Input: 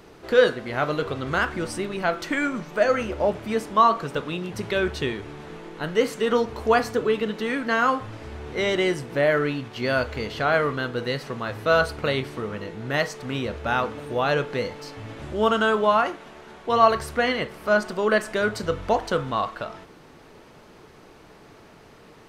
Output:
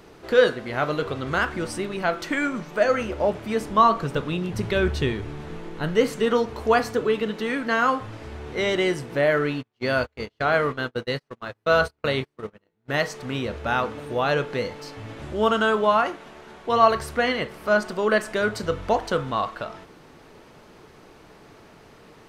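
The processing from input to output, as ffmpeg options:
-filter_complex "[0:a]asettb=1/sr,asplit=3[a][b][c];[a]atrim=end=3.604[d];[b]atrim=start=3.6:end=6.29,asetpts=PTS-STARTPTS,afade=t=in:d=0.004:c=qsin,afade=t=out:st=2.686:d=0.004:c=qsin,lowshelf=f=150:g=11.5[e];[c]atrim=start=6.286[f];[d][e]acrossfade=d=0.004:c1=hsin:c2=qsin[g];[g][f]acrossfade=d=0.004:c1=qsin:c2=hsin,asplit=3[h][i][j];[h]afade=t=out:st=9.61:d=0.02[k];[i]agate=range=-39dB:threshold=-29dB:ratio=16:release=100:detection=peak,afade=t=in:st=9.61:d=0.02,afade=t=out:st=12.88:d=0.02[l];[j]afade=t=in:st=12.88:d=0.02[m];[k][l][m]amix=inputs=3:normalize=0"

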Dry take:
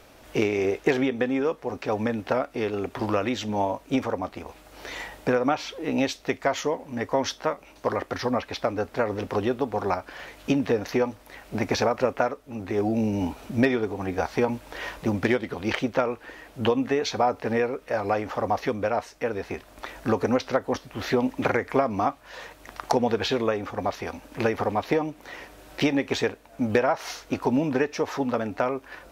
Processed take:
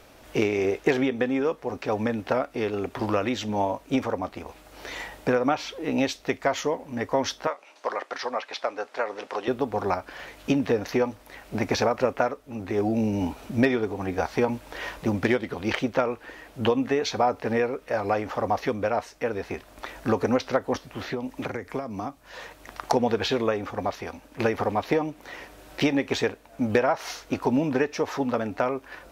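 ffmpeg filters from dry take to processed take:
-filter_complex "[0:a]asettb=1/sr,asplit=3[a][b][c];[a]atrim=end=7.474[d];[b]atrim=start=7.47:end=9.48,asetpts=PTS-STARTPTS,afade=t=in:d=0.004:c=qsin,afade=t=out:st=2.006:d=0.004:c=qsin,highpass=570,lowpass=7.9k[e];[c]atrim=start=9.476[f];[d][e]acrossfade=d=0.004:c1=hsin:c2=qsin[g];[g][f]acrossfade=d=0.004:c1=qsin:c2=hsin,asettb=1/sr,asplit=3[h][i][j];[h]atrim=end=20.864[k];[i]atrim=start=20.86:end=22.35,asetpts=PTS-STARTPTS,afade=t=in:d=0.004:c=qsin,afade=t=out:st=1.486:d=0.004:c=qsin,acrossover=split=89|380|4700[l][m][n][o];[l]acompressor=threshold=-53dB:ratio=3[p];[m]acompressor=threshold=-34dB:ratio=3[q];[n]acompressor=threshold=-36dB:ratio=3[r];[o]acompressor=threshold=-55dB:ratio=3[s];[p][q][r][s]amix=inputs=4:normalize=0[t];[j]atrim=start=22.346[u];[k][t]acrossfade=d=0.004:c1=hsin:c2=qsin[v];[v][u]acrossfade=d=0.004:c1=qsin:c2=hsin,asplit=2[w][x];[w]atrim=end=24.39,asetpts=PTS-STARTPTS,afade=t=out:st=23.75:d=0.64:silence=0.501187[y];[x]atrim=start=24.39,asetpts=PTS-STARTPTS,afade=t=in:d=0.004:c=hsin:silence=0.501187[z];[y][z]concat=n=2:v=0:a=1"

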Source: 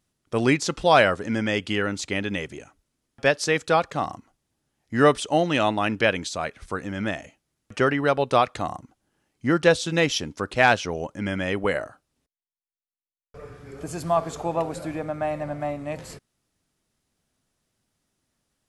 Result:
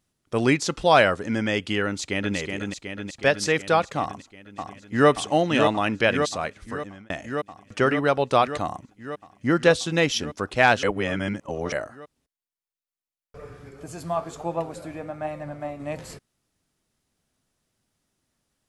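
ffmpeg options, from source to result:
-filter_complex "[0:a]asplit=2[a][b];[b]afade=t=in:st=1.86:d=0.01,afade=t=out:st=2.36:d=0.01,aecho=0:1:370|740|1110|1480|1850|2220|2590|2960|3330|3700|4070|4440:0.562341|0.393639|0.275547|0.192883|0.135018|0.0945127|0.0661589|0.0463112|0.0324179|0.0226925|0.0158848|0.0111193[c];[a][c]amix=inputs=2:normalize=0,asplit=2[d][e];[e]afade=t=in:st=4:d=0.01,afade=t=out:st=5.09:d=0.01,aecho=0:1:580|1160|1740|2320|2900|3480|4060|4640|5220|5800|6380|6960:0.530884|0.424708|0.339766|0.271813|0.21745|0.17396|0.139168|0.111335|0.0890676|0.0712541|0.0570033|0.0456026[f];[d][f]amix=inputs=2:normalize=0,asettb=1/sr,asplit=3[g][h][i];[g]atrim=end=13.694[j];[h]atrim=start=13.69:end=15.8,asetpts=PTS-STARTPTS,afade=t=in:d=0.004:c=qsin,afade=t=out:st=2.106:d=0.004:c=qsin,flanger=delay=5.7:depth=5.6:regen=65:speed=1.2:shape=sinusoidal[k];[i]atrim=start=15.796[l];[j][k]acrossfade=d=0.004:c1=hsin:c2=qsin[m];[m][l]acrossfade=d=0.004:c1=qsin:c2=hsin,asplit=4[n][o][p][q];[n]atrim=end=7.1,asetpts=PTS-STARTPTS,afade=t=out:st=6.48:d=0.62[r];[o]atrim=start=7.1:end=10.832,asetpts=PTS-STARTPTS,afade=t=in:d=0.004:c=hsin[s];[p]atrim=start=10.828:end=11.722,asetpts=PTS-STARTPTS,areverse[t];[q]atrim=start=11.718[u];[r][s]concat=n=2:v=0:a=1[v];[v][t]acrossfade=d=0.004:c1=hsin:c2=hsin[w];[w][u]acrossfade=d=0.004:c1=hsin:c2=hsin"

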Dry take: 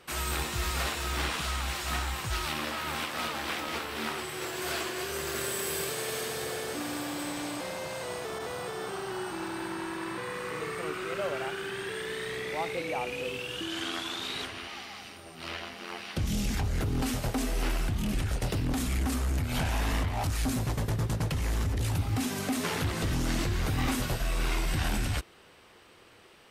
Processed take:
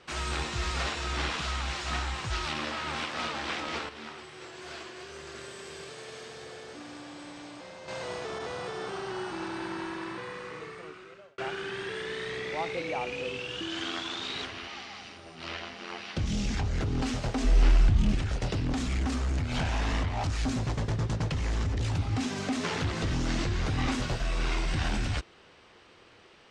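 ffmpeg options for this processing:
-filter_complex "[0:a]asettb=1/sr,asplit=3[a][b][c];[a]atrim=end=17.444[d];[b]atrim=start=17.44:end=18.15,asetpts=PTS-STARTPTS,afade=t=in:d=0.004:c=qsin,afade=t=out:st=0.706:d=0.004:c=qsin,lowshelf=f=110:g=12[e];[c]atrim=start=18.146[f];[d][e]acrossfade=d=0.004:c1=hsin:c2=qsin[g];[g][f]acrossfade=d=0.004:c1=qsin:c2=hsin,asplit=4[h][i][j][k];[h]atrim=end=3.892[l];[i]atrim=start=3.888:end=7.882,asetpts=PTS-STARTPTS,volume=-9dB[m];[j]atrim=start=7.878:end=11.38,asetpts=PTS-STARTPTS,afade=t=out:st=1.942:d=1.56[n];[k]atrim=start=11.38,asetpts=PTS-STARTPTS,afade=t=in:d=0.004:c=hsin[o];[l][m]acrossfade=d=0.004:c1=hsin:c2=hsin[p];[n][o]concat=n=2:v=0:a=1[q];[p][q]acrossfade=d=0.004:c1=hsin:c2=hsin,lowpass=f=6.9k:w=0.5412,lowpass=f=6.9k:w=1.3066"

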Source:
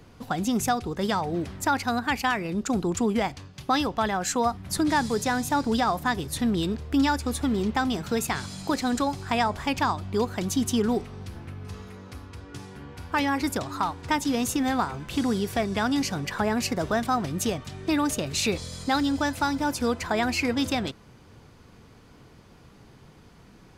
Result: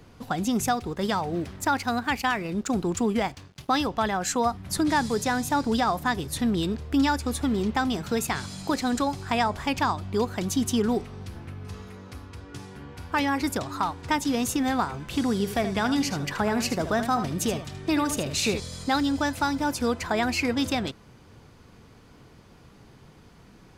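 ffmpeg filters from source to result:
-filter_complex "[0:a]asettb=1/sr,asplit=3[a][b][c];[a]atrim=end=0.694[d];[b]atrim=start=0.69:end=3.85,asetpts=PTS-STARTPTS,afade=t=in:d=0.004:c=qsin,afade=t=out:st=3.156:d=0.004:c=qsin,aeval=exprs='sgn(val(0))*max(abs(val(0))-0.00299,0)':c=same[e];[c]atrim=start=3.846[f];[d][e]acrossfade=d=0.004:c1=hsin:c2=qsin[g];[g][f]acrossfade=d=0.004:c1=qsin:c2=hsin,asettb=1/sr,asplit=3[h][i][j];[h]atrim=end=15.324[k];[i]atrim=start=15.32:end=18.6,asetpts=PTS-STARTPTS,afade=t=in:d=0.004:c=qsin,afade=t=out:st=3.276:d=0.004:c=qsin,aecho=1:1:77:0.316,atrim=end_sample=144648[l];[j]atrim=start=18.596[m];[k][l]acrossfade=d=0.004:c1=hsin:c2=qsin[n];[n][m]acrossfade=d=0.004:c1=qsin:c2=hsin"

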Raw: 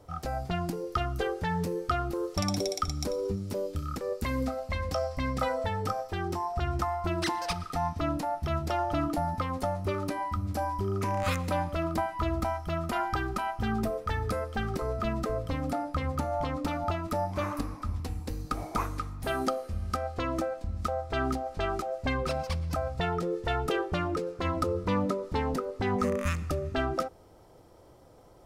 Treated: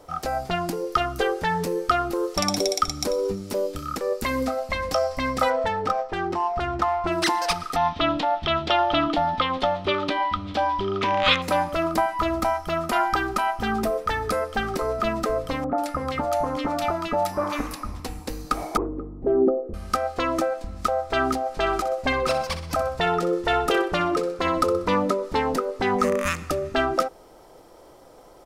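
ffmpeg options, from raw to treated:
-filter_complex "[0:a]asettb=1/sr,asplit=3[a][b][c];[a]atrim=end=5.504[d];[b]atrim=start=5.5:end=7.12,asetpts=PTS-STARTPTS,afade=t=in:d=0.004:c=qsin,afade=t=out:st=1.616:d=0.004:c=qsin,adynamicsmooth=sensitivity=5.5:basefreq=2.5k[e];[c]atrim=start=7.116[f];[d][e]acrossfade=d=0.004:c1=hsin:c2=qsin[g];[g][f]acrossfade=d=0.004:c1=qsin:c2=hsin,asettb=1/sr,asplit=3[h][i][j];[h]atrim=end=7.764[k];[i]atrim=start=7.76:end=11.42,asetpts=PTS-STARTPTS,afade=t=in:d=0.004:c=qsin,afade=t=out:st=3.656:d=0.004:c=qsin,lowpass=f=3.4k:t=q:w=4.9[l];[j]atrim=start=11.416[m];[k][l]acrossfade=d=0.004:c1=hsin:c2=qsin[n];[n][m]acrossfade=d=0.004:c1=qsin:c2=hsin,asettb=1/sr,asplit=3[o][p][q];[o]atrim=end=15.644[r];[p]atrim=start=15.64:end=17.95,asetpts=PTS-STARTPTS,afade=t=in:d=0.004:c=qsin,afade=t=out:st=2.306:d=0.004:c=qsin,acrossover=split=1500[s][t];[t]adelay=140[u];[s][u]amix=inputs=2:normalize=0,atrim=end_sample=101871[v];[q]atrim=start=17.946[w];[r][v]acrossfade=d=0.004:c1=hsin:c2=qsin[x];[x][w]acrossfade=d=0.004:c1=qsin:c2=hsin,asettb=1/sr,asplit=3[y][z][aa];[y]atrim=end=18.774[ab];[z]atrim=start=18.77:end=19.74,asetpts=PTS-STARTPTS,afade=t=in:d=0.004:c=qsin,afade=t=out:st=0.966:d=0.004:c=qsin,lowpass=f=390:t=q:w=3.6[ac];[aa]atrim=start=19.736[ad];[ab][ac]acrossfade=d=0.004:c1=hsin:c2=qsin[ae];[ae][ad]acrossfade=d=0.004:c1=qsin:c2=hsin,asplit=3[af][ag][ah];[af]afade=t=out:st=21.65:d=0.02[ai];[ag]aecho=1:1:63|126|189|252:0.266|0.112|0.0469|0.0197,afade=t=in:st=21.65:d=0.02,afade=t=out:st=24.94:d=0.02[aj];[ah]afade=t=in:st=24.94:d=0.02[ak];[ai][aj][ak]amix=inputs=3:normalize=0,equalizer=f=90:w=0.64:g=-14.5,volume=9dB"

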